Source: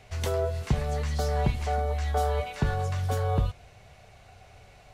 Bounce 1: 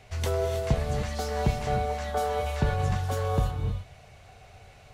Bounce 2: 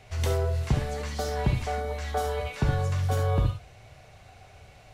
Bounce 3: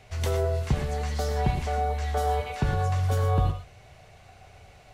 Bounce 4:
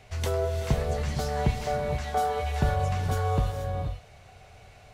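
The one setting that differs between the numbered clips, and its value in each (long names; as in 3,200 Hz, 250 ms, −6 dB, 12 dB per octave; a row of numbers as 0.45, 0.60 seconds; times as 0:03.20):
reverb whose tail is shaped and stops, gate: 340, 90, 140, 510 milliseconds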